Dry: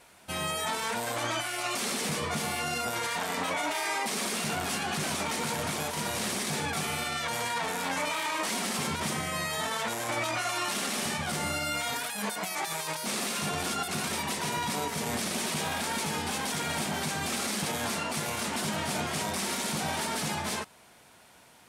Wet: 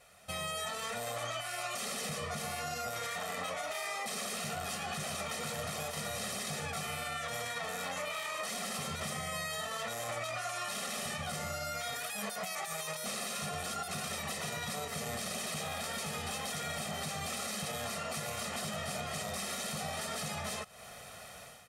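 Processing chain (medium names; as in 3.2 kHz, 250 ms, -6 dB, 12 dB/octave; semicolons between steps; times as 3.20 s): level rider gain up to 12 dB; comb 1.6 ms, depth 78%; compression 6:1, threshold -30 dBFS, peak gain reduction 16.5 dB; trim -6.5 dB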